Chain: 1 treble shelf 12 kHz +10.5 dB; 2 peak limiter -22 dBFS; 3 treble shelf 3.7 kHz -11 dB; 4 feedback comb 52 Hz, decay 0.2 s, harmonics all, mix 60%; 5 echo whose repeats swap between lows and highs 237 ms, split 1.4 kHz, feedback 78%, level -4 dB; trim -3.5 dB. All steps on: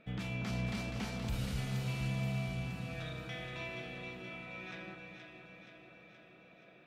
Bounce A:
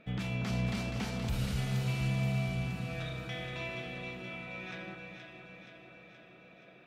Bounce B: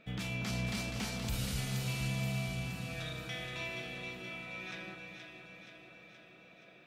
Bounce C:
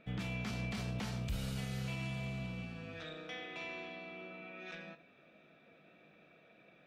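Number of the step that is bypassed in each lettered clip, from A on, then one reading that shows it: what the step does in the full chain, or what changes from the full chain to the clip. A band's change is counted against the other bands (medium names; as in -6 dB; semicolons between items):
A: 4, loudness change +4.0 LU; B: 3, 8 kHz band +8.5 dB; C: 5, echo-to-direct -3.0 dB to none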